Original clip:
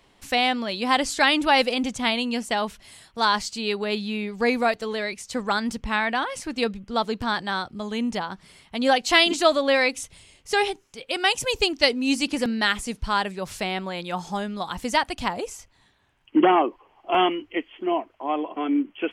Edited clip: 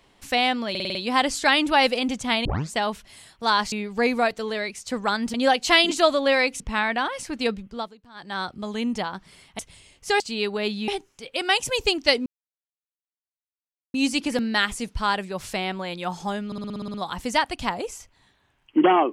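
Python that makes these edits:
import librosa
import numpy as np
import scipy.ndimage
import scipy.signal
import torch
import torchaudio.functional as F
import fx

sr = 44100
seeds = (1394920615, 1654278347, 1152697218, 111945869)

y = fx.edit(x, sr, fx.stutter(start_s=0.7, slice_s=0.05, count=6),
    fx.tape_start(start_s=2.2, length_s=0.28),
    fx.move(start_s=3.47, length_s=0.68, to_s=10.63),
    fx.fade_down_up(start_s=6.79, length_s=0.84, db=-23.5, fade_s=0.32),
    fx.move(start_s=8.76, length_s=1.26, to_s=5.77),
    fx.insert_silence(at_s=12.01, length_s=1.68),
    fx.stutter(start_s=14.53, slice_s=0.06, count=9), tone=tone)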